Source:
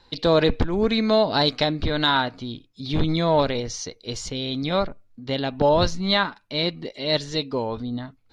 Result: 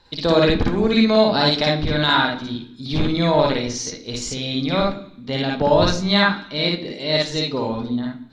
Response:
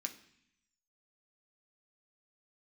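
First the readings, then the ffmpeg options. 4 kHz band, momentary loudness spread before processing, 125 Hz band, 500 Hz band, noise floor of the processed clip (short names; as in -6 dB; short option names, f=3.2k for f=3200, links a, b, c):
+3.5 dB, 12 LU, +3.5 dB, +3.0 dB, -42 dBFS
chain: -filter_complex "[0:a]asplit=2[a][b];[1:a]atrim=start_sample=2205,adelay=55[c];[b][c]afir=irnorm=-1:irlink=0,volume=4dB[d];[a][d]amix=inputs=2:normalize=0"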